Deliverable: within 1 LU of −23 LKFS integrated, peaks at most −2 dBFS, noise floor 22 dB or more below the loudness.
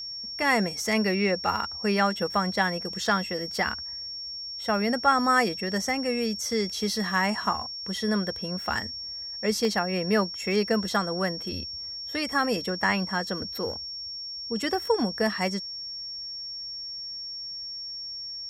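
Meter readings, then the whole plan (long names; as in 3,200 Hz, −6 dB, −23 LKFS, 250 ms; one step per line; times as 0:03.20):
number of dropouts 3; longest dropout 1.5 ms; interfering tone 5,500 Hz; level of the tone −34 dBFS; integrated loudness −27.5 LKFS; sample peak −8.5 dBFS; target loudness −23.0 LKFS
→ repair the gap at 0:03.06/0:09.65/0:12.84, 1.5 ms
notch filter 5,500 Hz, Q 30
level +4.5 dB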